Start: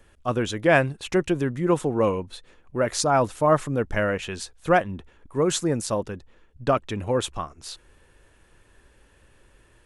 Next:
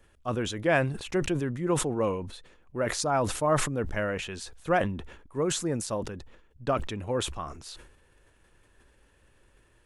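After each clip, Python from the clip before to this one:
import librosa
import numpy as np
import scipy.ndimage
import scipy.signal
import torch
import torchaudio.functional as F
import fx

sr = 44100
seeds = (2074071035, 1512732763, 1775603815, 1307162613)

y = fx.sustainer(x, sr, db_per_s=69.0)
y = F.gain(torch.from_numpy(y), -6.0).numpy()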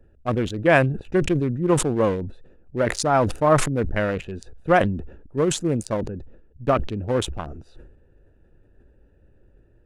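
y = fx.wiener(x, sr, points=41)
y = F.gain(torch.from_numpy(y), 8.0).numpy()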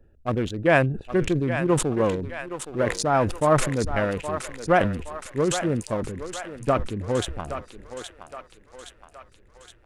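y = fx.echo_thinned(x, sr, ms=819, feedback_pct=59, hz=580.0, wet_db=-8)
y = F.gain(torch.from_numpy(y), -2.0).numpy()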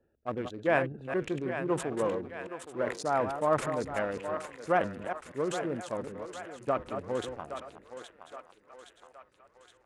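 y = fx.reverse_delay(x, sr, ms=190, wet_db=-8)
y = fx.highpass(y, sr, hz=440.0, slope=6)
y = fx.high_shelf(y, sr, hz=2400.0, db=-10.5)
y = F.gain(torch.from_numpy(y), -4.5).numpy()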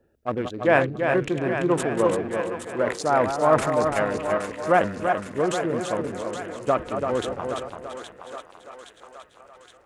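y = fx.echo_feedback(x, sr, ms=337, feedback_pct=22, wet_db=-6.0)
y = F.gain(torch.from_numpy(y), 7.5).numpy()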